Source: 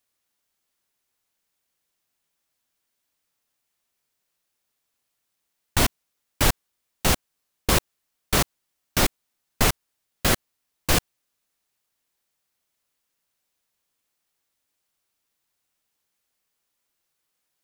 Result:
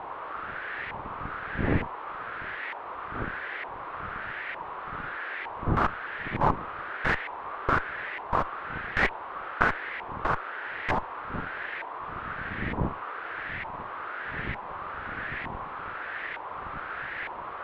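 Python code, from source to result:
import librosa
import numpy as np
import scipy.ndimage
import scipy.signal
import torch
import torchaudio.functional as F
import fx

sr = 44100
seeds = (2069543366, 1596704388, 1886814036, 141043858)

y = fx.dmg_wind(x, sr, seeds[0], corner_hz=160.0, level_db=-31.0)
y = fx.cheby_harmonics(y, sr, harmonics=(3, 6), levels_db=(-8, -13), full_scale_db=-4.0)
y = fx.dmg_noise_band(y, sr, seeds[1], low_hz=320.0, high_hz=3500.0, level_db=-38.0)
y = fx.filter_lfo_lowpass(y, sr, shape='saw_up', hz=1.1, low_hz=930.0, high_hz=2000.0, q=4.2)
y = y * librosa.db_to_amplitude(-3.0)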